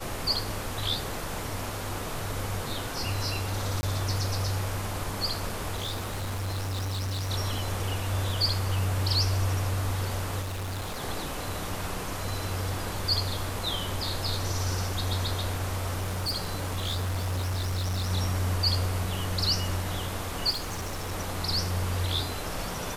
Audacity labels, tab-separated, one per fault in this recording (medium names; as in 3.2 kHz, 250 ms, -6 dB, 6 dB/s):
3.810000	3.830000	dropout 20 ms
5.750000	7.310000	clipped -28.5 dBFS
10.410000	11.030000	clipped -30.5 dBFS
15.980000	18.110000	clipped -26 dBFS
20.500000	21.130000	clipped -29 dBFS